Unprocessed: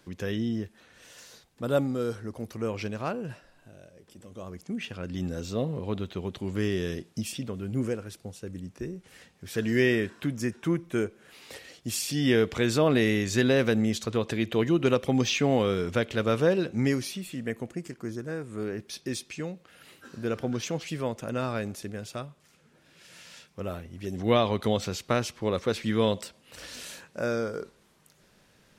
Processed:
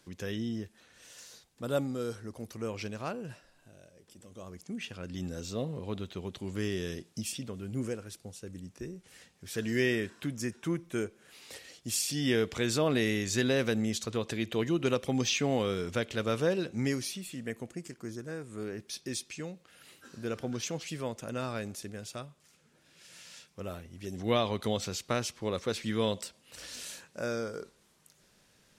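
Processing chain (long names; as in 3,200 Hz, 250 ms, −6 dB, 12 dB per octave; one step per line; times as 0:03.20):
parametric band 7,800 Hz +6.5 dB 2.1 octaves
level −5.5 dB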